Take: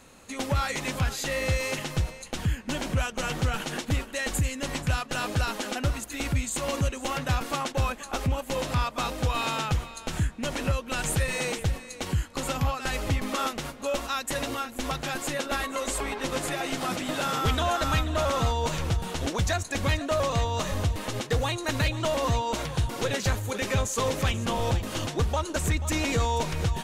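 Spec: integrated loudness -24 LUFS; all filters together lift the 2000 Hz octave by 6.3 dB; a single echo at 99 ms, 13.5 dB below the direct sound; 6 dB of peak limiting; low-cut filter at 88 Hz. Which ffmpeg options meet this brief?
-af "highpass=88,equalizer=f=2k:t=o:g=8,alimiter=limit=-16dB:level=0:latency=1,aecho=1:1:99:0.211,volume=3.5dB"

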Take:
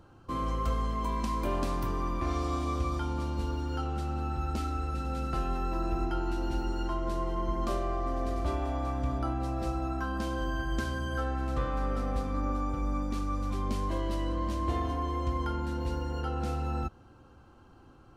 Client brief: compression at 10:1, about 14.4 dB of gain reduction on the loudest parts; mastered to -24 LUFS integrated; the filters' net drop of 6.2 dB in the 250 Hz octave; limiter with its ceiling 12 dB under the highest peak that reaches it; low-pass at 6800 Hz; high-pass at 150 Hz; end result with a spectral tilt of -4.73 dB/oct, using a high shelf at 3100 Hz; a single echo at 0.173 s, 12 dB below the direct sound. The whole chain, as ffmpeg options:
-af "highpass=150,lowpass=6.8k,equalizer=f=250:t=o:g=-8,highshelf=f=3.1k:g=6.5,acompressor=threshold=-46dB:ratio=10,alimiter=level_in=21.5dB:limit=-24dB:level=0:latency=1,volume=-21.5dB,aecho=1:1:173:0.251,volume=29.5dB"

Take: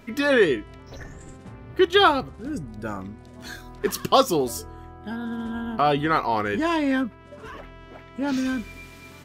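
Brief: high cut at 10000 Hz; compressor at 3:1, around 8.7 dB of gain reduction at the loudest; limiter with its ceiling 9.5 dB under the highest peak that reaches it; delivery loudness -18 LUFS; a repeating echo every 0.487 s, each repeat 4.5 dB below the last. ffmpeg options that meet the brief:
-af "lowpass=10k,acompressor=threshold=-24dB:ratio=3,alimiter=limit=-21.5dB:level=0:latency=1,aecho=1:1:487|974|1461|1948|2435|2922|3409|3896|4383:0.596|0.357|0.214|0.129|0.0772|0.0463|0.0278|0.0167|0.01,volume=13dB"

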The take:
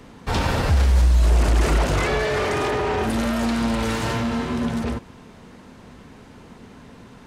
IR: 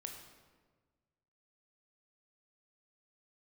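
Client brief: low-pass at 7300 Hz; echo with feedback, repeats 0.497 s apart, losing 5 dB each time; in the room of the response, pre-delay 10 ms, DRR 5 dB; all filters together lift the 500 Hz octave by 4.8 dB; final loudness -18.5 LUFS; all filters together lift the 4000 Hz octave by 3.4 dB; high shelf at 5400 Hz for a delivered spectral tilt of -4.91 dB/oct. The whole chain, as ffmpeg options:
-filter_complex "[0:a]lowpass=7.3k,equalizer=f=500:t=o:g=6,equalizer=f=4k:t=o:g=7.5,highshelf=f=5.4k:g=-7.5,aecho=1:1:497|994|1491|1988|2485|2982|3479:0.562|0.315|0.176|0.0988|0.0553|0.031|0.0173,asplit=2[a][b];[1:a]atrim=start_sample=2205,adelay=10[c];[b][c]afir=irnorm=-1:irlink=0,volume=-2dB[d];[a][d]amix=inputs=2:normalize=0,volume=-0.5dB"

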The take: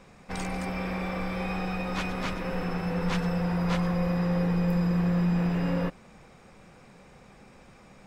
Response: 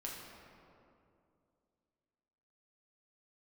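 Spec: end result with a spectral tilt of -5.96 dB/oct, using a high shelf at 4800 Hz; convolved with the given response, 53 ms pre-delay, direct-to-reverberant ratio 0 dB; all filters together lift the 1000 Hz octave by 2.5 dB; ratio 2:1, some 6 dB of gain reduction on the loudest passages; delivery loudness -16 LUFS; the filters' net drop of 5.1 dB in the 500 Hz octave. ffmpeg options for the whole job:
-filter_complex "[0:a]equalizer=f=500:t=o:g=-7,equalizer=f=1k:t=o:g=5,highshelf=f=4.8k:g=8,acompressor=threshold=-34dB:ratio=2,asplit=2[a][b];[1:a]atrim=start_sample=2205,adelay=53[c];[b][c]afir=irnorm=-1:irlink=0,volume=0.5dB[d];[a][d]amix=inputs=2:normalize=0,volume=14.5dB"

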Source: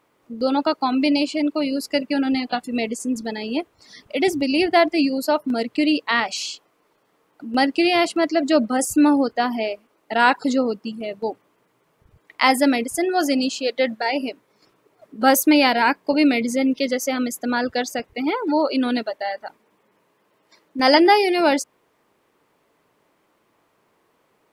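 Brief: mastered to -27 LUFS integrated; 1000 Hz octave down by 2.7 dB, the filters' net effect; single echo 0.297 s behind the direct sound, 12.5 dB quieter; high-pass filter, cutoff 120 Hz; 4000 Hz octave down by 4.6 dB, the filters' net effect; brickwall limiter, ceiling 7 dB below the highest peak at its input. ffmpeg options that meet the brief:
-af "highpass=120,equalizer=f=1k:t=o:g=-3.5,equalizer=f=4k:t=o:g=-6,alimiter=limit=-11dB:level=0:latency=1,aecho=1:1:297:0.237,volume=-4.5dB"

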